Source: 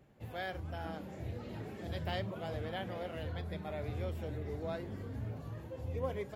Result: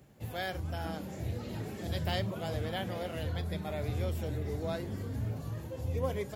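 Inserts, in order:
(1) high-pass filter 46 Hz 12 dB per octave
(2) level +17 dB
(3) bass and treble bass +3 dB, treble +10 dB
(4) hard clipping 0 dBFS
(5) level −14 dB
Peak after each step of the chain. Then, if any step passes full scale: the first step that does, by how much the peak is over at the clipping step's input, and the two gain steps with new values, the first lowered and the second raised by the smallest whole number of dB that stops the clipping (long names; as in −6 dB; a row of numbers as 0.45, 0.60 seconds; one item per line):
−24.0, −7.0, −5.5, −5.5, −19.5 dBFS
no step passes full scale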